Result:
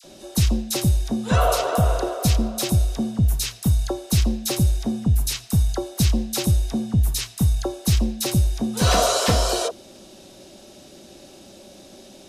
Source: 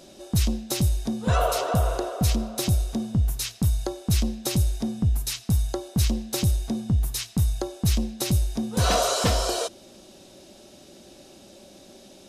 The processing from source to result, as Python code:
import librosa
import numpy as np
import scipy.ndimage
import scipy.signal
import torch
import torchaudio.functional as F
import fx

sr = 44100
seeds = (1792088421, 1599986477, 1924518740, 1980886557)

y = fx.dispersion(x, sr, late='lows', ms=42.0, hz=1400.0)
y = F.gain(torch.from_numpy(y), 3.5).numpy()